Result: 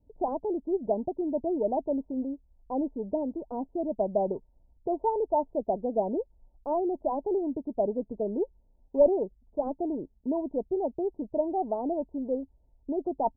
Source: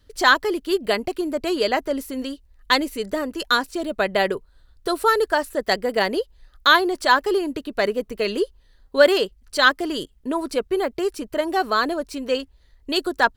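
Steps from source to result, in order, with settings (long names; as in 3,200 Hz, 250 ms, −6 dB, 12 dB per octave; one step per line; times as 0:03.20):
harmonic generator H 2 −13 dB, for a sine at −1 dBFS
Chebyshev low-pass with heavy ripple 930 Hz, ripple 6 dB
level −2 dB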